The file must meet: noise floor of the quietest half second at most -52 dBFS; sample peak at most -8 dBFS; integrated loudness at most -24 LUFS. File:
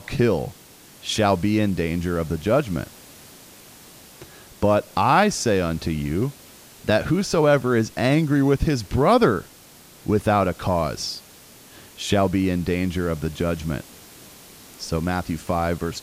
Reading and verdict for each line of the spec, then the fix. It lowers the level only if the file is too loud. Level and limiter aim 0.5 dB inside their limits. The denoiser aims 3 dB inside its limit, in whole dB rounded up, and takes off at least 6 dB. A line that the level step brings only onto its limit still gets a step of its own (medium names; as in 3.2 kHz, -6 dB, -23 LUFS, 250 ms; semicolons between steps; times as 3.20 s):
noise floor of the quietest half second -48 dBFS: fail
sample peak -5.0 dBFS: fail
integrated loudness -22.0 LUFS: fail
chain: noise reduction 6 dB, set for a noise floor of -48 dBFS; trim -2.5 dB; peak limiter -8.5 dBFS